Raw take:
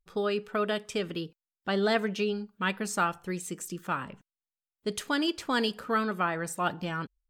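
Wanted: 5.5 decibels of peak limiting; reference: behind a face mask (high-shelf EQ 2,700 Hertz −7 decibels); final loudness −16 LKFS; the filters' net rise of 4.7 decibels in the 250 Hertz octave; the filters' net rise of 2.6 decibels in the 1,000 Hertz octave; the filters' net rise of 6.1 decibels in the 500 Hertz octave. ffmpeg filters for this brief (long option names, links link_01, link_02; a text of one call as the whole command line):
ffmpeg -i in.wav -af "equalizer=frequency=250:width_type=o:gain=4.5,equalizer=frequency=500:width_type=o:gain=6,equalizer=frequency=1000:width_type=o:gain=3,alimiter=limit=-16dB:level=0:latency=1,highshelf=frequency=2700:gain=-7,volume=12.5dB" out.wav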